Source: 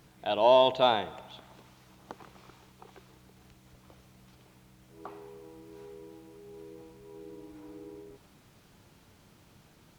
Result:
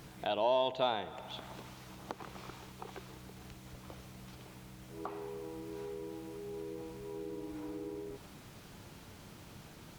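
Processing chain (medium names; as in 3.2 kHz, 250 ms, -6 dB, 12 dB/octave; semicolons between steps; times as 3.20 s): compression 2:1, threshold -47 dBFS, peak gain reduction 16.5 dB; trim +6.5 dB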